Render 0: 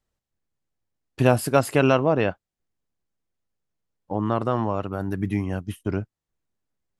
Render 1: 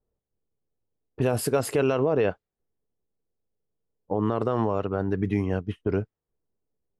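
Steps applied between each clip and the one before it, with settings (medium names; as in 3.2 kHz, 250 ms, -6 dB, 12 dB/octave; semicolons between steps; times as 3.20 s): level-controlled noise filter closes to 780 Hz, open at -18 dBFS; peaking EQ 440 Hz +9.5 dB 0.37 oct; peak limiter -13.5 dBFS, peak gain reduction 10.5 dB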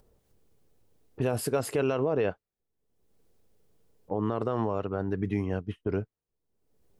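upward compressor, threshold -43 dBFS; trim -4 dB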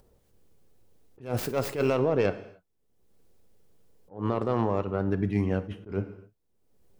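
tracing distortion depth 0.16 ms; gated-style reverb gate 310 ms falling, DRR 11.5 dB; attacks held to a fixed rise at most 170 dB/s; trim +2.5 dB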